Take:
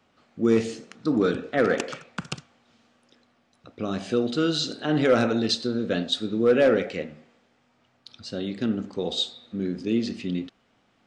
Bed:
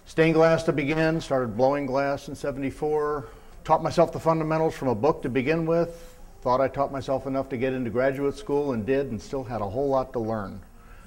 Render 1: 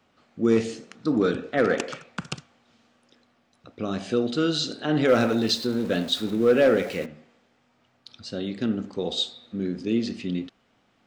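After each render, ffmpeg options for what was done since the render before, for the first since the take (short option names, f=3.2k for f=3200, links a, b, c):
-filter_complex "[0:a]asettb=1/sr,asplit=3[a][b][c];[a]atrim=end=5.084[d];[b]atrim=start=5.08:end=7.06,asetpts=PTS-STARTPTS,afade=t=in:d=0.004:c=qsin,afade=t=out:st=1.976:d=0.004:c=qsin,aeval=exprs='val(0)+0.5*0.015*sgn(val(0))':c=same[e];[c]atrim=start=7.056[f];[d][e]acrossfade=d=0.004:c1=hsin:c2=qsin[g];[g][f]acrossfade=d=0.004:c1=qsin:c2=hsin"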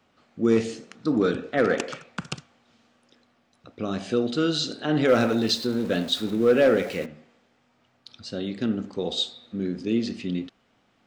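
-af anull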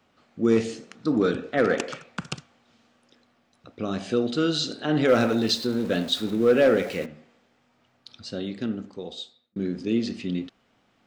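-filter_complex "[0:a]asplit=2[a][b];[a]atrim=end=9.56,asetpts=PTS-STARTPTS,afade=t=out:st=8.29:d=1.27[c];[b]atrim=start=9.56,asetpts=PTS-STARTPTS,afade=t=in:d=0.004:c=hsin[d];[c][d]concat=n=2:v=0:a=1"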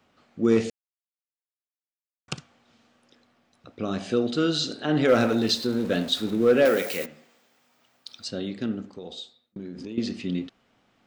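-filter_complex "[0:a]asettb=1/sr,asplit=3[a][b][c];[a]atrim=end=6.654[d];[b]atrim=start=6.65:end=8.28,asetpts=PTS-STARTPTS,afade=t=in:d=0.004:c=qsin,afade=t=out:st=1.626:d=0.004:c=qsin,aemphasis=mode=production:type=bsi[e];[c]atrim=start=8.276[f];[d][e]acrossfade=d=0.004:c1=hsin:c2=qsin[g];[g][f]acrossfade=d=0.004:c1=qsin:c2=hsin,asettb=1/sr,asplit=3[h][i][j];[h]atrim=end=8.974[k];[i]atrim=start=8.97:end=9.98,asetpts=PTS-STARTPTS,afade=t=in:d=0.004:c=qsin,afade=t=out:st=1.006:d=0.004:c=qsin,acompressor=threshold=-33dB:ratio=6:attack=3.2:release=140:knee=1:detection=peak[l];[j]atrim=start=9.976[m];[k][l]acrossfade=d=0.004:c1=hsin:c2=qsin[n];[n][m]acrossfade=d=0.004:c1=qsin:c2=hsin,asplit=3[o][p][q];[o]atrim=end=0.7,asetpts=PTS-STARTPTS,afade=t=out:st=0.696:d=0.004:c=hsin[r];[p]atrim=start=0.7:end=2.28,asetpts=PTS-STARTPTS,volume=0[s];[q]atrim=start=2.28,asetpts=PTS-STARTPTS,afade=t=in:d=0.004:c=hsin[t];[r][s][t]concat=n=3:v=0:a=1"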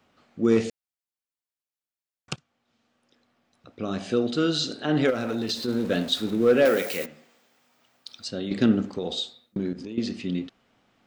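-filter_complex "[0:a]asplit=3[a][b][c];[a]afade=t=out:st=5.09:d=0.02[d];[b]acompressor=threshold=-24dB:ratio=6:attack=3.2:release=140:knee=1:detection=peak,afade=t=in:st=5.09:d=0.02,afade=t=out:st=5.67:d=0.02[e];[c]afade=t=in:st=5.67:d=0.02[f];[d][e][f]amix=inputs=3:normalize=0,asplit=4[g][h][i][j];[g]atrim=end=2.36,asetpts=PTS-STARTPTS,afade=t=out:st=2.356:d=0.004:c=hsin:silence=0.11885[k];[h]atrim=start=2.36:end=8.512,asetpts=PTS-STARTPTS,afade=t=in:d=1.73:silence=0.11885[l];[i]atrim=start=8.508:end=9.732,asetpts=PTS-STARTPTS,volume=9dB[m];[j]atrim=start=9.728[n];[k][l]concat=n=2:v=0:a=1[o];[o][m]acrossfade=d=0.004:c1=hsin:c2=hsin[p];[p][n]acrossfade=d=0.004:c1=hsin:c2=hsin"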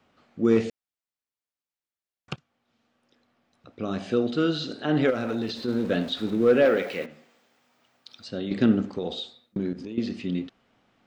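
-filter_complex "[0:a]acrossover=split=4100[a][b];[b]acompressor=threshold=-46dB:ratio=4:attack=1:release=60[c];[a][c]amix=inputs=2:normalize=0,highshelf=f=6k:g=-6.5"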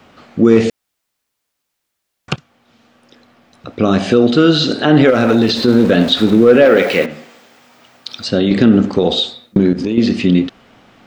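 -filter_complex "[0:a]asplit=2[a][b];[b]acompressor=threshold=-31dB:ratio=6,volume=-2dB[c];[a][c]amix=inputs=2:normalize=0,alimiter=level_in=14dB:limit=-1dB:release=50:level=0:latency=1"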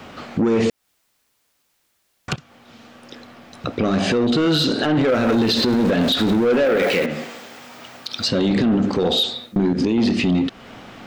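-af "acontrast=86,alimiter=limit=-12dB:level=0:latency=1:release=209"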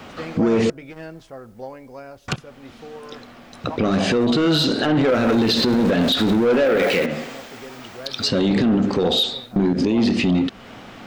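-filter_complex "[1:a]volume=-13.5dB[a];[0:a][a]amix=inputs=2:normalize=0"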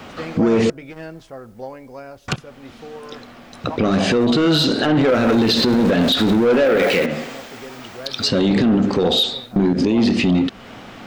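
-af "volume=2dB"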